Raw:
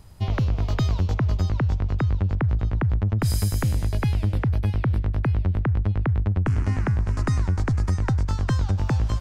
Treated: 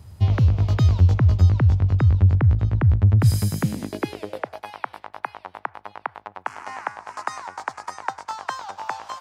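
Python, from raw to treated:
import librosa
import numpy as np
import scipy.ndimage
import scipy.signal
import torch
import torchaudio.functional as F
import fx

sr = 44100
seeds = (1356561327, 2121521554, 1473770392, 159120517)

y = fx.filter_sweep_highpass(x, sr, from_hz=84.0, to_hz=870.0, start_s=3.14, end_s=4.68, q=2.9)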